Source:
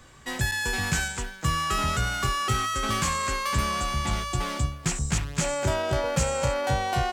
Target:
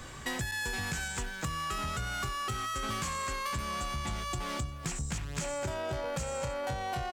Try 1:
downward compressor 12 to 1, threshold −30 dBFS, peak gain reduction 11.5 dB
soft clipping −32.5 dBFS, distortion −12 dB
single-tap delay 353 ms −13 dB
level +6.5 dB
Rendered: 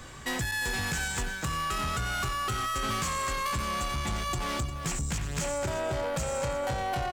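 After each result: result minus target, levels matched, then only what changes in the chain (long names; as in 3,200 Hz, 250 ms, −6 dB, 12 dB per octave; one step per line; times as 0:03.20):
echo-to-direct +12 dB; downward compressor: peak gain reduction −6 dB
change: single-tap delay 353 ms −25 dB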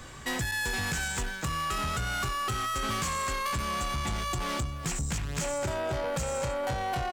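downward compressor: peak gain reduction −6 dB
change: downward compressor 12 to 1, threshold −36.5 dBFS, peak gain reduction 17.5 dB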